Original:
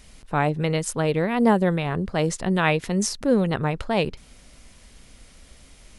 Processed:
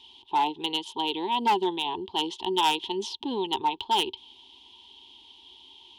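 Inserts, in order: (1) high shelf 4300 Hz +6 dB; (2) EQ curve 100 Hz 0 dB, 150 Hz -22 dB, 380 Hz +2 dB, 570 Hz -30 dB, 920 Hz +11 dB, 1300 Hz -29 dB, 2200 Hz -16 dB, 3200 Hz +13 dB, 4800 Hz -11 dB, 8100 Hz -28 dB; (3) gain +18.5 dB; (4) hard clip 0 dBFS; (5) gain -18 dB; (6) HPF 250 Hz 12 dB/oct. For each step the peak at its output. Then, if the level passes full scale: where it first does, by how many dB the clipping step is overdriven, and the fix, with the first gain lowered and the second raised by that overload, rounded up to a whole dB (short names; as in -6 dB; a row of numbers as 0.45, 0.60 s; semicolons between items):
-5.5, -8.5, +10.0, 0.0, -18.0, -13.5 dBFS; step 3, 10.0 dB; step 3 +8.5 dB, step 5 -8 dB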